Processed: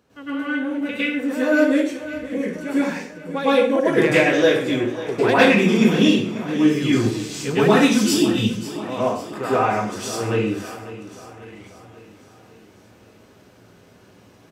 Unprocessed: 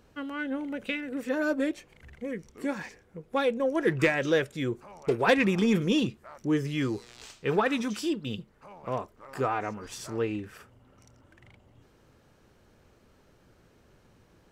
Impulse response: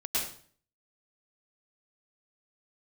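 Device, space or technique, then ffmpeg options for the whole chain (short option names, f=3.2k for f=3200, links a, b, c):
far laptop microphone: -filter_complex "[0:a]asettb=1/sr,asplit=3[a][b][c];[a]atrim=end=6.824[d];[b]atrim=start=6.82:end=8.37,asetpts=PTS-STARTPTS,afade=t=in:d=0.004:c=qsin,afade=t=out:st=1.546:d=0.004:c=qsin,bass=f=250:g=7,treble=f=4k:g=9[e];[c]atrim=start=8.366[f];[d][e]acrossfade=d=0.004:c1=hsin:c2=qsin[g];[g][f]acrossfade=d=0.004:c1=qsin:c2=hsin,aecho=1:1:543|1086|1629|2172|2715:0.178|0.0942|0.05|0.0265|0.014[h];[1:a]atrim=start_sample=2205[i];[h][i]afir=irnorm=-1:irlink=0,highpass=110,dynaudnorm=f=640:g=5:m=3.5dB,volume=1dB"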